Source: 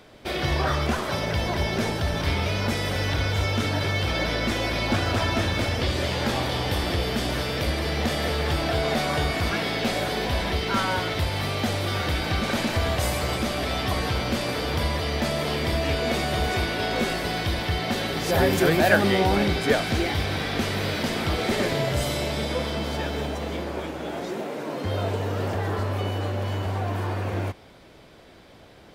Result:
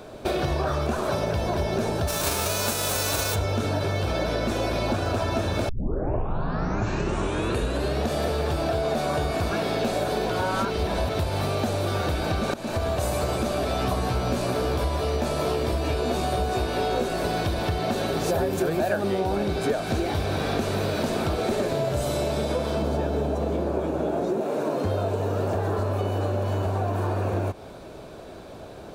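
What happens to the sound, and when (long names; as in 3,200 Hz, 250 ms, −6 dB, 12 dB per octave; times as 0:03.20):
0:02.07–0:03.34: spectral envelope flattened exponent 0.3
0:05.69: tape start 2.41 s
0:10.30–0:11.09: reverse
0:12.54–0:13.23: fade in, from −17 dB
0:13.79–0:17.08: double-tracking delay 16 ms −3 dB
0:22.82–0:24.41: tilt shelving filter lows +4 dB
whole clip: thirty-one-band graphic EQ 400 Hz +4 dB, 630 Hz +5 dB, 2,000 Hz −12 dB, 3,150 Hz −8 dB, 5,000 Hz −6 dB, 12,500 Hz −3 dB; downward compressor, threshold −30 dBFS; level +7.5 dB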